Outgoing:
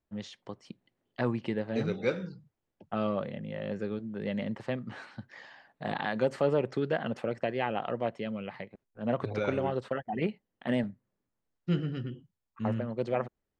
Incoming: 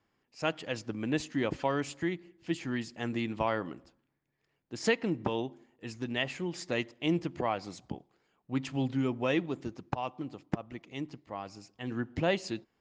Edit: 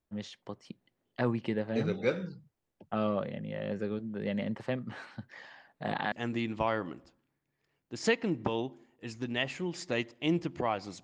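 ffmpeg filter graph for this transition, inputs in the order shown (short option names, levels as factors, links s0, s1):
-filter_complex "[0:a]apad=whole_dur=11.03,atrim=end=11.03,atrim=end=6.122[s0];[1:a]atrim=start=2.918:end=7.83[s1];[s0][s1]acrossfade=d=0.004:c1=hsin:c2=hsin"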